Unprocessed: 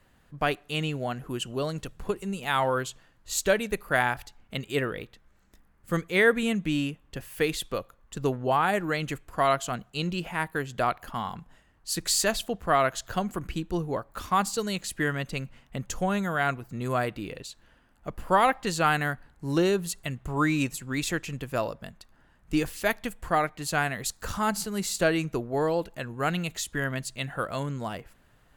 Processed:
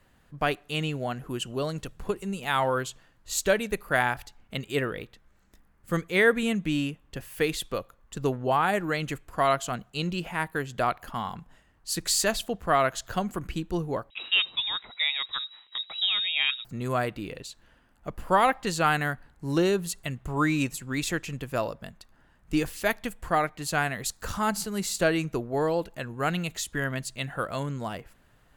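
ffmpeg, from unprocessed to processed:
-filter_complex "[0:a]asettb=1/sr,asplit=3[a][b][c];[a]atrim=end=14.104[d];[b]atrim=start=14.1:end=16.65,asetpts=PTS-STARTPTS,afade=t=in:d=0.004:c=qsin,afade=t=out:st=2.546:d=0.004:c=qsin,lowpass=f=3.3k:t=q:w=0.5098,lowpass=f=3.3k:t=q:w=0.6013,lowpass=f=3.3k:t=q:w=0.9,lowpass=f=3.3k:t=q:w=2.563,afreqshift=-3900[e];[c]atrim=start=16.646[f];[d][e]acrossfade=d=0.004:c1=hsin:c2=qsin[g];[g][f]acrossfade=d=0.004:c1=qsin:c2=hsin"

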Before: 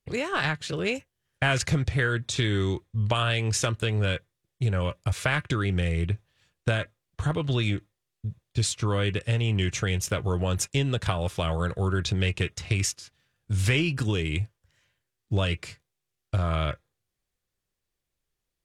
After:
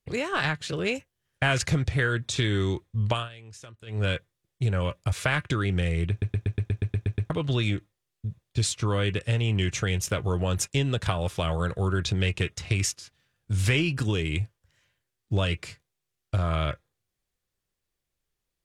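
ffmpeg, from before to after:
-filter_complex "[0:a]asplit=13[a][b][c][d][e][f][g][h][i][j][k][l][m];[a]atrim=end=3.29,asetpts=PTS-STARTPTS,afade=t=out:st=3.11:d=0.18:silence=0.1[n];[b]atrim=start=3.29:end=3.86,asetpts=PTS-STARTPTS,volume=-20dB[o];[c]atrim=start=3.86:end=6.222,asetpts=PTS-STARTPTS,afade=t=in:d=0.18:silence=0.1[p];[d]atrim=start=6.098:end=6.222[q];[e]atrim=start=6.098:end=6.222[r];[f]atrim=start=6.098:end=6.222[s];[g]atrim=start=6.098:end=6.222[t];[h]atrim=start=6.098:end=6.222[u];[i]atrim=start=6.098:end=6.222[v];[j]atrim=start=6.098:end=6.222[w];[k]atrim=start=6.098:end=6.222[x];[l]atrim=start=6.098:end=6.222[y];[m]atrim=start=7.298[z];[n][o][p]concat=n=3:v=0:a=1[aa];[aa][q]acrossfade=d=0.004:c1=hsin:c2=hsin[ab];[ab][r]acrossfade=d=0.004:c1=hsin:c2=hsin[ac];[ac][s]acrossfade=d=0.004:c1=hsin:c2=hsin[ad];[ad][t]acrossfade=d=0.004:c1=hsin:c2=hsin[ae];[ae][u]acrossfade=d=0.004:c1=hsin:c2=hsin[af];[af][v]acrossfade=d=0.004:c1=hsin:c2=hsin[ag];[ag][w]acrossfade=d=0.004:c1=hsin:c2=hsin[ah];[ah][x]acrossfade=d=0.004:c1=hsin:c2=hsin[ai];[ai][y]acrossfade=d=0.004:c1=hsin:c2=hsin[aj];[aj][z]acrossfade=d=0.004:c1=hsin:c2=hsin"

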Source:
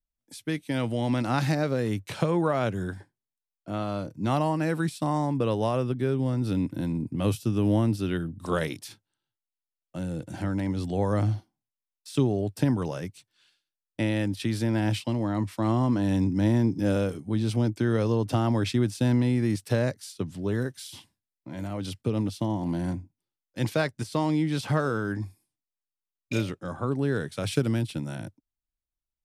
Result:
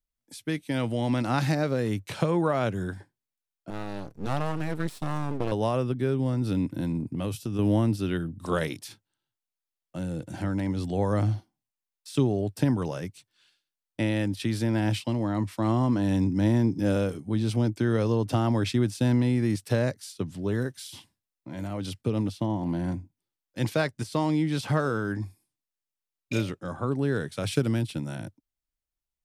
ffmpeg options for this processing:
-filter_complex "[0:a]asettb=1/sr,asplit=3[a][b][c];[a]atrim=end=3.704[d];[b]atrim=start=3.7:end=5.52,asetpts=PTS-STARTPTS,afade=t=in:d=0.004:c=qsin,afade=t=out:st=1.816:d=0.004:c=qsin,aeval=exprs='max(val(0),0)':c=same[e];[c]atrim=start=5.516[f];[d][e]acrossfade=d=0.004:c1=hsin:c2=qsin[g];[g][f]acrossfade=d=0.004:c1=qsin:c2=hsin,asettb=1/sr,asplit=3[h][i][j];[h]atrim=end=6.994[k];[i]atrim=start=6.99:end=7.59,asetpts=PTS-STARTPTS,afade=t=in:d=0.004:c=qsin,afade=t=out:st=0.596:d=0.004:c=qsin,acompressor=threshold=-26dB:ratio=6:attack=3.2:release=140:knee=1:detection=peak[l];[j]atrim=start=7.586[m];[k][l]acrossfade=d=0.004:c1=hsin:c2=qsin[n];[n][m]acrossfade=d=0.004:c1=qsin:c2=hsin,asettb=1/sr,asplit=3[o][p][q];[o]atrim=end=22.324[r];[p]atrim=start=22.32:end=22.92,asetpts=PTS-STARTPTS,afade=t=in:d=0.004:c=qsin,afade=t=out:st=0.596:d=0.004:c=qsin,bass=f=250:g=0,treble=f=4k:g=-6[s];[q]atrim=start=22.916[t];[r][s]acrossfade=d=0.004:c1=hsin:c2=qsin[u];[u][t]acrossfade=d=0.004:c1=qsin:c2=hsin"

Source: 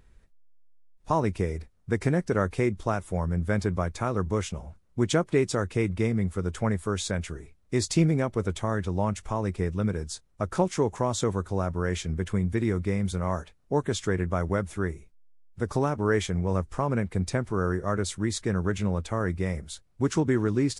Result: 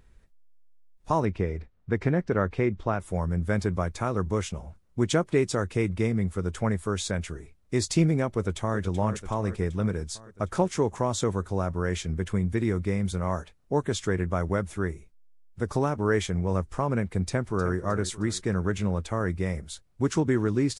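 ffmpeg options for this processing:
-filter_complex "[0:a]asettb=1/sr,asplit=3[a][b][c];[a]atrim=end=1.254[d];[b]atrim=start=1.25:end=3,asetpts=PTS-STARTPTS,afade=t=in:d=0.004:c=qsin,afade=t=out:st=1.746:d=0.004:c=qsin,lowpass=3.4k[e];[c]atrim=start=2.996[f];[d][e]acrossfade=d=0.004:c1=hsin:c2=qsin[g];[g][f]acrossfade=d=0.004:c1=qsin:c2=hsin,asplit=2[h][i];[i]afade=t=in:st=8.33:d=0.01,afade=t=out:st=8.78:d=0.01,aecho=0:1:380|760|1140|1520|1900|2280|2660|3040:0.298538|0.19405|0.126132|0.0819861|0.0532909|0.0346391|0.0225154|0.014635[j];[h][j]amix=inputs=2:normalize=0,asplit=2[k][l];[l]afade=t=in:st=17.26:d=0.01,afade=t=out:st=17.78:d=0.01,aecho=0:1:310|620|930|1240|1550:0.211349|0.105674|0.0528372|0.0264186|0.0132093[m];[k][m]amix=inputs=2:normalize=0"

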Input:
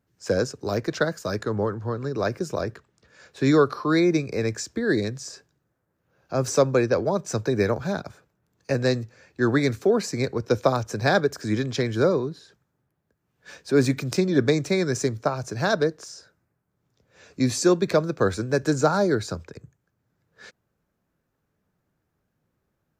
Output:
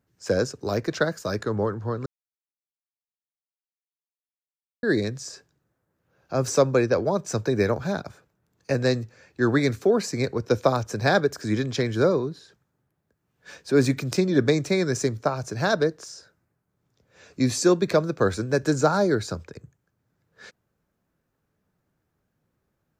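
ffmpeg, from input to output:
-filter_complex "[0:a]asplit=3[a][b][c];[a]atrim=end=2.06,asetpts=PTS-STARTPTS,afade=t=out:st=2.056:d=0.004:c=hsin[d];[b]atrim=start=2.06:end=4.83,asetpts=PTS-STARTPTS,volume=0[e];[c]atrim=start=4.83,asetpts=PTS-STARTPTS,afade=t=in:d=0.004:c=hsin[f];[d][e][f]concat=n=3:v=0:a=1"

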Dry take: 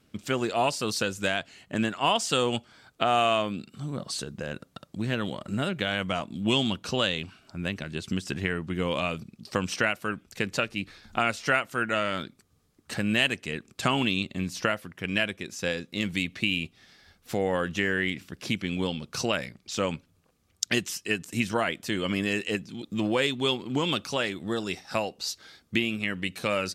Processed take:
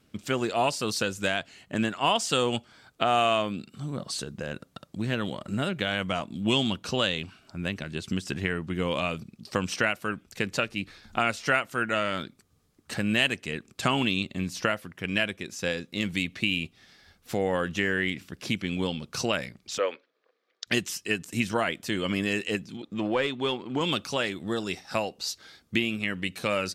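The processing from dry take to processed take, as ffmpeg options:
-filter_complex "[0:a]asplit=3[a][b][c];[a]afade=t=out:st=19.77:d=0.02[d];[b]highpass=f=390:w=0.5412,highpass=f=390:w=1.3066,equalizer=f=480:t=q:w=4:g=5,equalizer=f=850:t=q:w=4:g=-6,equalizer=f=1.8k:t=q:w=4:g=5,equalizer=f=2.8k:t=q:w=4:g=-5,lowpass=f=4.2k:w=0.5412,lowpass=f=4.2k:w=1.3066,afade=t=in:st=19.77:d=0.02,afade=t=out:st=20.66:d=0.02[e];[c]afade=t=in:st=20.66:d=0.02[f];[d][e][f]amix=inputs=3:normalize=0,asettb=1/sr,asplit=3[g][h][i];[g]atrim=end=22.774[j];[h]atrim=start=22.77:end=23.81,asetpts=PTS-STARTPTS,afade=t=in:d=0.004:c=qsin,afade=t=out:st=1.036:d=0.004:c=qsin,asplit=2[k][l];[l]highpass=f=720:p=1,volume=9dB,asoftclip=type=tanh:threshold=-11.5dB[m];[k][m]amix=inputs=2:normalize=0,lowpass=f=1.3k:p=1,volume=-6dB[n];[i]atrim=start=23.806[o];[j][n]acrossfade=d=0.004:c1=hsin:c2=qsin[p];[p][o]acrossfade=d=0.004:c1=qsin:c2=hsin"

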